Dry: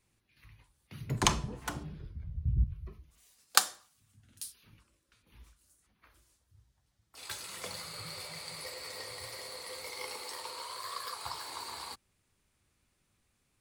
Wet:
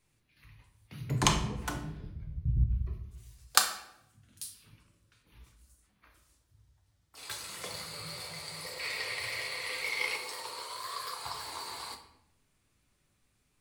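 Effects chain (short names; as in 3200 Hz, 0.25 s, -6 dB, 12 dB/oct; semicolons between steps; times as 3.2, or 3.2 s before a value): 7.39–8.25 crackle 170/s -56 dBFS; 8.79–10.17 bell 2400 Hz +14 dB 1.1 oct; reverb RT60 0.85 s, pre-delay 7 ms, DRR 4.5 dB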